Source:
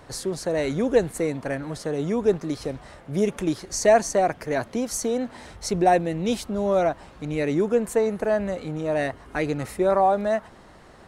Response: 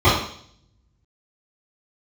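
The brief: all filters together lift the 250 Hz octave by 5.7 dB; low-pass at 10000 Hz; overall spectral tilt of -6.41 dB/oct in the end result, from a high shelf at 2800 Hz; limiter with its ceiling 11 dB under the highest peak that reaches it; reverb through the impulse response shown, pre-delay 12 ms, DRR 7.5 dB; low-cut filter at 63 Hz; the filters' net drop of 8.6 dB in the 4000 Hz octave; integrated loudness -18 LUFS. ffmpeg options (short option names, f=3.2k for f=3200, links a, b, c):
-filter_complex "[0:a]highpass=63,lowpass=10k,equalizer=f=250:t=o:g=7.5,highshelf=f=2.8k:g=-7.5,equalizer=f=4k:t=o:g=-4.5,alimiter=limit=-16dB:level=0:latency=1,asplit=2[a][b];[1:a]atrim=start_sample=2205,adelay=12[c];[b][c]afir=irnorm=-1:irlink=0,volume=-32.5dB[d];[a][d]amix=inputs=2:normalize=0,volume=6.5dB"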